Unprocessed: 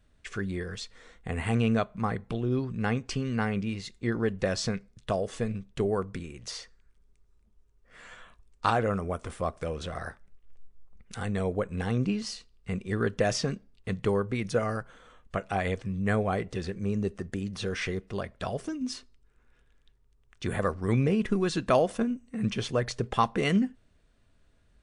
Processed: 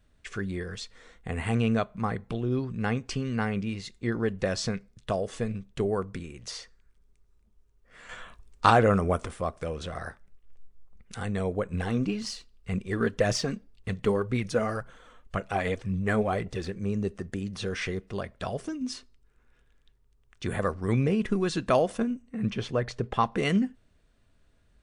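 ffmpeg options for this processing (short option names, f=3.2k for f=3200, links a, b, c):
-filter_complex "[0:a]asettb=1/sr,asplit=3[a][b][c];[a]atrim=end=8.094[d];[b]atrim=start=8.09:end=9.26,asetpts=PTS-STARTPTS,afade=t=in:d=0.004:c=qsin,afade=t=out:st=1.166:d=0.004:c=qsin,acontrast=63[e];[c]atrim=start=9.256[f];[d][e]acrossfade=d=0.004:c1=hsin:c2=qsin[g];[g][f]acrossfade=d=0.004:c1=qsin:c2=hsin,asettb=1/sr,asplit=3[h][i][j];[h]atrim=end=11.734[k];[i]atrim=start=11.73:end=16.68,asetpts=PTS-STARTPTS,afade=t=in:d=0.004:c=qsin,afade=t=out:st=4.946:d=0.004:c=qsin,aphaser=in_gain=1:out_gain=1:delay=4.8:decay=0.42:speed=1.9:type=triangular[l];[j]atrim=start=16.676[m];[k][l]acrossfade=d=0.004:c1=hsin:c2=qsin[n];[n][m]acrossfade=d=0.004:c1=qsin:c2=hsin,asettb=1/sr,asplit=3[o][p][q];[o]atrim=end=22.224[r];[p]atrim=start=22.22:end=23.32,asetpts=PTS-STARTPTS,afade=t=in:d=0.004:c=qsin,afade=t=out:st=1.096:d=0.004:c=qsin,lowpass=f=3.1k:p=1[s];[q]atrim=start=23.316[t];[r][s]acrossfade=d=0.004:c1=hsin:c2=qsin[u];[u][t]acrossfade=d=0.004:c1=qsin:c2=hsin"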